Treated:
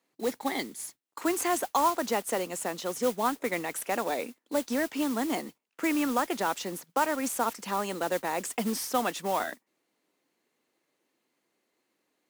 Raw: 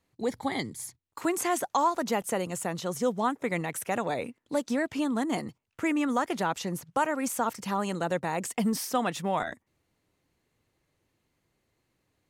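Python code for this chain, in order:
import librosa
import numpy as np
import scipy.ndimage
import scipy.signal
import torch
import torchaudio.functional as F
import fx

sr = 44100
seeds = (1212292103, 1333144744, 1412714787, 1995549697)

y = scipy.signal.sosfilt(scipy.signal.butter(4, 230.0, 'highpass', fs=sr, output='sos'), x)
y = fx.mod_noise(y, sr, seeds[0], snr_db=14)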